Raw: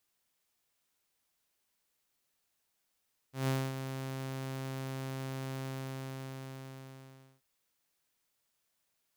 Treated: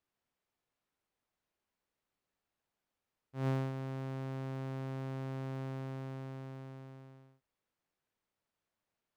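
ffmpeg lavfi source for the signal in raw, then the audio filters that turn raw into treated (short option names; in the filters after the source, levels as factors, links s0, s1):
-f lavfi -i "aevalsrc='0.0531*(2*mod(133*t,1)-1)':d=4.08:s=44100,afade=t=in:d=0.147,afade=t=out:st=0.147:d=0.246:silence=0.355,afade=t=out:st=2.28:d=1.8"
-af "lowpass=f=1200:p=1"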